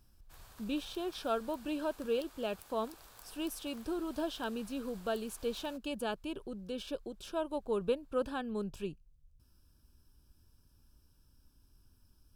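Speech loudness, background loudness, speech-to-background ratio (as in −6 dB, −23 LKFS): −38.0 LKFS, −56.0 LKFS, 18.0 dB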